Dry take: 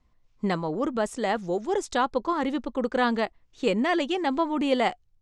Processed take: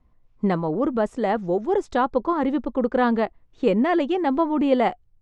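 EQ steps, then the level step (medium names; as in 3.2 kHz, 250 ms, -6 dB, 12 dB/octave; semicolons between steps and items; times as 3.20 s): low-pass 1 kHz 6 dB/octave; +5.5 dB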